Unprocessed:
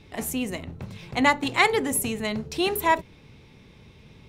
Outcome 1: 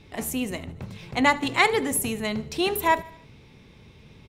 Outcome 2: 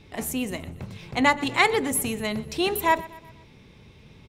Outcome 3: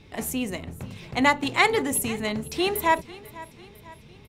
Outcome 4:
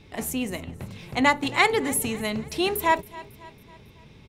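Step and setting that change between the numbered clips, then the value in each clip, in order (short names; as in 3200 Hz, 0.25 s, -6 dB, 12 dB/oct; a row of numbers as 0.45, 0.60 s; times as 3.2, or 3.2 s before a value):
feedback echo, time: 75, 123, 498, 275 ms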